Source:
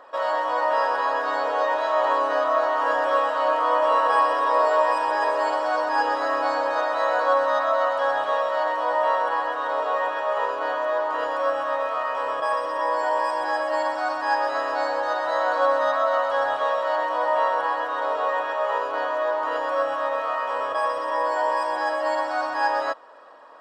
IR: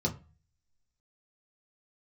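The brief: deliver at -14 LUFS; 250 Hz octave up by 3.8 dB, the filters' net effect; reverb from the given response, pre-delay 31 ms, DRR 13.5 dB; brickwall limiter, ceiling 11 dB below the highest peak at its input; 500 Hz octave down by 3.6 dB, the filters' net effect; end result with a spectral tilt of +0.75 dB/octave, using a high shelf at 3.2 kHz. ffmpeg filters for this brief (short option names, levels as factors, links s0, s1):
-filter_complex "[0:a]equalizer=f=250:t=o:g=7.5,equalizer=f=500:t=o:g=-6,highshelf=f=3200:g=5,alimiter=limit=0.106:level=0:latency=1,asplit=2[s0][s1];[1:a]atrim=start_sample=2205,adelay=31[s2];[s1][s2]afir=irnorm=-1:irlink=0,volume=0.106[s3];[s0][s3]amix=inputs=2:normalize=0,volume=5.01"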